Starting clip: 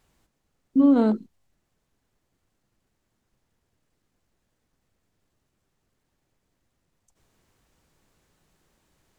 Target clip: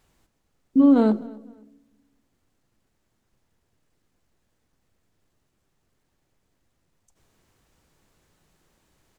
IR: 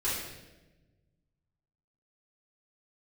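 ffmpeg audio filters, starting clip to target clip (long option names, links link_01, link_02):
-filter_complex "[0:a]asplit=2[link_01][link_02];[link_02]adelay=256,lowpass=frequency=3600:poles=1,volume=-22dB,asplit=2[link_03][link_04];[link_04]adelay=256,lowpass=frequency=3600:poles=1,volume=0.3[link_05];[link_01][link_03][link_05]amix=inputs=3:normalize=0,asplit=2[link_06][link_07];[1:a]atrim=start_sample=2205[link_08];[link_07][link_08]afir=irnorm=-1:irlink=0,volume=-26dB[link_09];[link_06][link_09]amix=inputs=2:normalize=0,volume=1.5dB"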